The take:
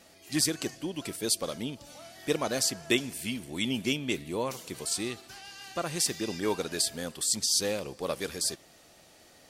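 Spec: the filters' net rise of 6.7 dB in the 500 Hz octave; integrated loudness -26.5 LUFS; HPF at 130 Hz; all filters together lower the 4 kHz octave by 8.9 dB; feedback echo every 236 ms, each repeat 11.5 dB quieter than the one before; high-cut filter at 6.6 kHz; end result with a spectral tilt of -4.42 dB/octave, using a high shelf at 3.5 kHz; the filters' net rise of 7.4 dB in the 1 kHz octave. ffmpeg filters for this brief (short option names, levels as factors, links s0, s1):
-af "highpass=130,lowpass=6600,equalizer=f=500:t=o:g=6.5,equalizer=f=1000:t=o:g=8,highshelf=f=3500:g=-5.5,equalizer=f=4000:t=o:g=-7,aecho=1:1:236|472|708:0.266|0.0718|0.0194,volume=1.41"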